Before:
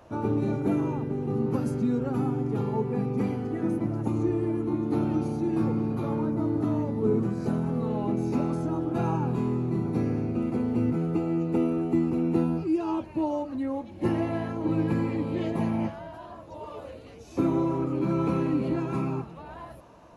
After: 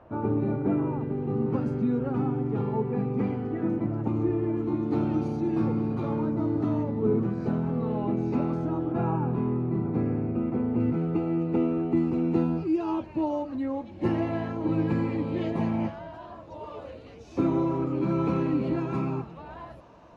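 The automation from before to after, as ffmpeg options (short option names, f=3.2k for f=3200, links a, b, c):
-af "asetnsamples=n=441:p=0,asendcmd='1.01 lowpass f 2800;4.57 lowpass f 5000;6.83 lowpass f 3300;8.92 lowpass f 2000;10.8 lowpass f 3400;11.97 lowpass f 5300',lowpass=1.9k"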